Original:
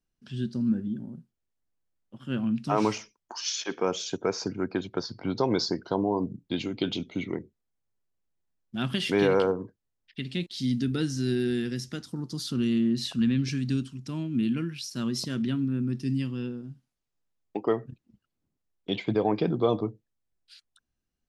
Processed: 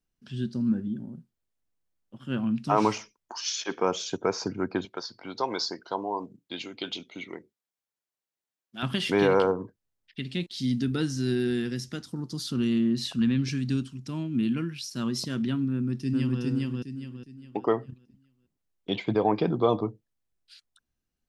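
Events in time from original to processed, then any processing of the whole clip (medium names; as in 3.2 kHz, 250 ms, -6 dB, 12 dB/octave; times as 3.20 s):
4.85–8.83 s: high-pass 840 Hz 6 dB/octave
15.72–16.41 s: echo throw 410 ms, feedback 35%, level -0.5 dB
whole clip: dynamic bell 980 Hz, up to +5 dB, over -43 dBFS, Q 1.4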